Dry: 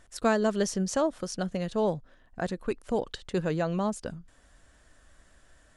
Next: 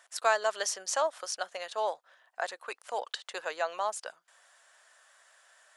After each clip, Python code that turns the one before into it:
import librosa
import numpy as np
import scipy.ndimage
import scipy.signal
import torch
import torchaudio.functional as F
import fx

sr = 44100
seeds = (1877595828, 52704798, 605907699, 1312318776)

y = scipy.signal.sosfilt(scipy.signal.butter(4, 680.0, 'highpass', fs=sr, output='sos'), x)
y = F.gain(torch.from_numpy(y), 3.0).numpy()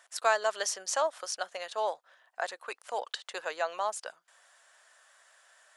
y = x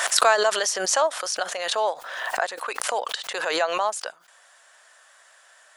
y = fx.pre_swell(x, sr, db_per_s=39.0)
y = F.gain(torch.from_numpy(y), 7.0).numpy()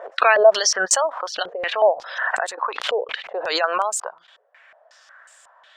y = np.repeat(scipy.signal.resample_poly(x, 1, 2), 2)[:len(x)]
y = fx.spec_gate(y, sr, threshold_db=-25, keep='strong')
y = fx.filter_held_lowpass(y, sr, hz=5.5, low_hz=440.0, high_hz=8000.0)